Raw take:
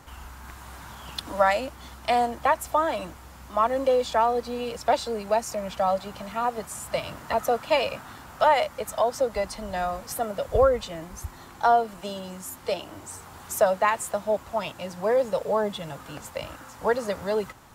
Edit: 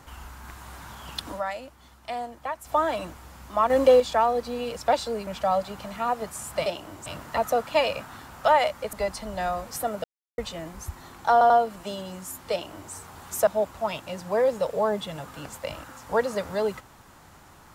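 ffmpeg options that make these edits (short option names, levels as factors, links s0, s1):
-filter_complex "[0:a]asplit=14[s0][s1][s2][s3][s4][s5][s6][s7][s8][s9][s10][s11][s12][s13];[s0]atrim=end=1.41,asetpts=PTS-STARTPTS,afade=t=out:st=1.27:d=0.14:c=qsin:silence=0.316228[s14];[s1]atrim=start=1.41:end=2.64,asetpts=PTS-STARTPTS,volume=0.316[s15];[s2]atrim=start=2.64:end=3.702,asetpts=PTS-STARTPTS,afade=t=in:d=0.14:c=qsin:silence=0.316228[s16];[s3]atrim=start=3.698:end=4.002,asetpts=PTS-STARTPTS,volume=1.88[s17];[s4]atrim=start=3.998:end=5.272[s18];[s5]atrim=start=5.628:end=7.022[s19];[s6]atrim=start=12.698:end=13.102[s20];[s7]atrim=start=7.018:end=8.892[s21];[s8]atrim=start=9.288:end=10.4,asetpts=PTS-STARTPTS,afade=t=out:st=1.108:d=0.004:c=hsin[s22];[s9]atrim=start=10.4:end=10.74,asetpts=PTS-STARTPTS,volume=0[s23];[s10]atrim=start=10.74:end=11.772,asetpts=PTS-STARTPTS,afade=t=in:d=0.004:c=hsin[s24];[s11]atrim=start=11.678:end=11.772[s25];[s12]atrim=start=11.678:end=13.652[s26];[s13]atrim=start=14.188[s27];[s14][s15][s16]concat=n=3:v=0:a=1[s28];[s28][s17]acrossfade=d=0.004:c1=hsin:c2=hsin[s29];[s29][s18]acrossfade=d=0.004:c1=hsin:c2=hsin[s30];[s30][s19]acrossfade=d=0.004:c1=hsin:c2=hsin[s31];[s31][s20]acrossfade=d=0.004:c1=hsin:c2=hsin[s32];[s32][s21]acrossfade=d=0.004:c1=hsin:c2=hsin[s33];[s22][s23][s24]concat=n=3:v=0:a=1[s34];[s33][s34]acrossfade=d=0.004:c1=hsin:c2=hsin[s35];[s35][s25]acrossfade=d=0.004:c1=hsin:c2=hsin[s36];[s36][s26]acrossfade=d=0.004:c1=hsin:c2=hsin[s37];[s37][s27]acrossfade=d=0.004:c1=hsin:c2=hsin"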